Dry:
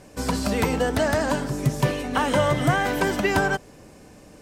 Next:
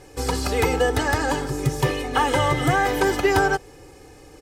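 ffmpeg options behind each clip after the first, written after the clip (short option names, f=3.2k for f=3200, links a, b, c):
-af "aecho=1:1:2.4:0.84"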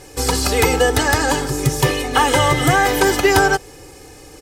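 -af "highshelf=f=3.3k:g=7.5,volume=4.5dB"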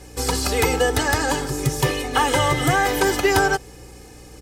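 -af "aeval=exprs='val(0)+0.01*(sin(2*PI*60*n/s)+sin(2*PI*2*60*n/s)/2+sin(2*PI*3*60*n/s)/3+sin(2*PI*4*60*n/s)/4+sin(2*PI*5*60*n/s)/5)':c=same,volume=-4dB"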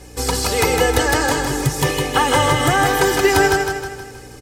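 -af "aecho=1:1:158|316|474|632|790|948:0.562|0.276|0.135|0.0662|0.0324|0.0159,volume=2dB"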